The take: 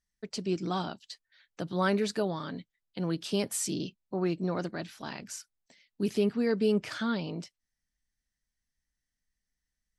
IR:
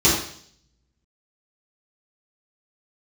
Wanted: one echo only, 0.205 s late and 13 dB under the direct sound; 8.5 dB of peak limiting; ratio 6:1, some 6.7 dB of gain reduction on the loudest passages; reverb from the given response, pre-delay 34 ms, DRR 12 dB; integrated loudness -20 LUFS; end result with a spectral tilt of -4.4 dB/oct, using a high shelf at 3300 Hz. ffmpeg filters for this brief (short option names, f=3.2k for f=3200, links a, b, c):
-filter_complex "[0:a]highshelf=f=3.3k:g=6.5,acompressor=threshold=-29dB:ratio=6,alimiter=level_in=3dB:limit=-24dB:level=0:latency=1,volume=-3dB,aecho=1:1:205:0.224,asplit=2[a][b];[1:a]atrim=start_sample=2205,adelay=34[c];[b][c]afir=irnorm=-1:irlink=0,volume=-31.5dB[d];[a][d]amix=inputs=2:normalize=0,volume=16.5dB"